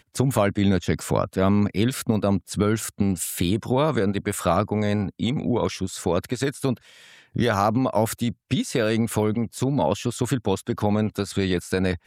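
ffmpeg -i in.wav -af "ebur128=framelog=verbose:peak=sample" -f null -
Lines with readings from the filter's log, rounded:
Integrated loudness:
  I:         -23.9 LUFS
  Threshold: -33.9 LUFS
Loudness range:
  LRA:         2.0 LU
  Threshold: -44.1 LUFS
  LRA low:   -25.1 LUFS
  LRA high:  -23.1 LUFS
Sample peak:
  Peak:       -5.7 dBFS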